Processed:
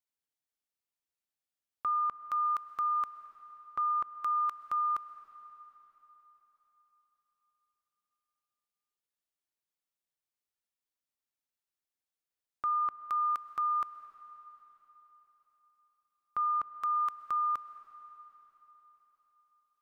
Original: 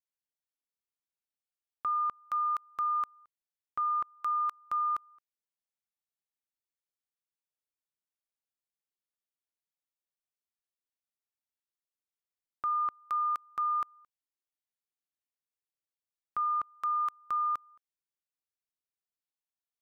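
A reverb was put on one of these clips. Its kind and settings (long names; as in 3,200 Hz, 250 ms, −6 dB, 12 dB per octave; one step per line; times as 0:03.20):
comb and all-pass reverb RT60 4.3 s, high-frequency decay 0.95×, pre-delay 85 ms, DRR 13 dB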